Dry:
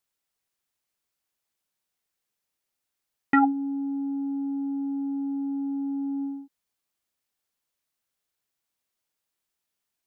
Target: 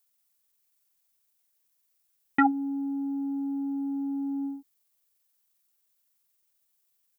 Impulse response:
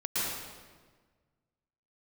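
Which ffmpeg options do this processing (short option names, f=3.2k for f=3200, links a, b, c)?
-af "atempo=1.4,aemphasis=mode=production:type=50kf,volume=-1.5dB"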